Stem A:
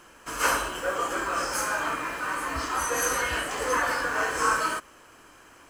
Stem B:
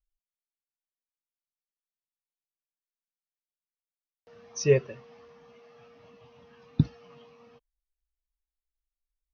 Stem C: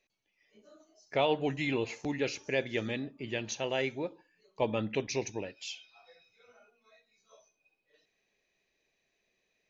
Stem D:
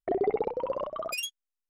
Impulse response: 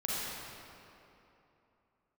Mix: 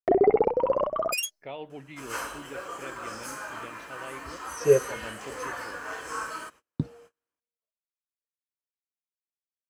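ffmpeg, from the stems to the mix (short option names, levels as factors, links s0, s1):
-filter_complex "[0:a]highpass=52,adelay=1700,volume=0.316[s0];[1:a]agate=range=0.0224:threshold=0.00794:ratio=3:detection=peak,equalizer=f=510:w=0.86:g=13,volume=0.355[s1];[2:a]lowpass=3200,adelay=300,volume=0.282[s2];[3:a]equalizer=f=3700:w=2.7:g=-13.5,acontrast=28,volume=1.26[s3];[s0][s1][s2][s3]amix=inputs=4:normalize=0,agate=range=0.0251:threshold=0.00251:ratio=16:detection=peak"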